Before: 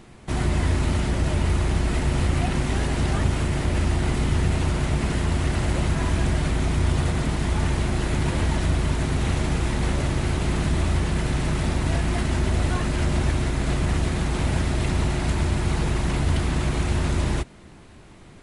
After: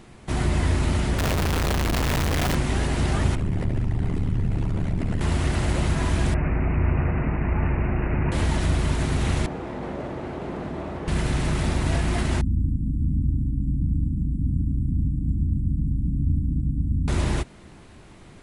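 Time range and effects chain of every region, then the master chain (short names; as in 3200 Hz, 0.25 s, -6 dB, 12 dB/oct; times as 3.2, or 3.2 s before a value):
1.18–2.55 notches 60/120/180/240/300/360 Hz + Schmitt trigger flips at -38.5 dBFS
3.35–5.21 formant sharpening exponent 1.5 + ring modulator 37 Hz + fast leveller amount 50%
6.34–8.32 air absorption 210 m + careless resampling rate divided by 8×, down none, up filtered
9.46–11.08 band-pass 510 Hz, Q 0.88 + doubler 40 ms -11 dB
12.41–17.08 brick-wall FIR band-stop 320–7400 Hz + air absorption 280 m
whole clip: dry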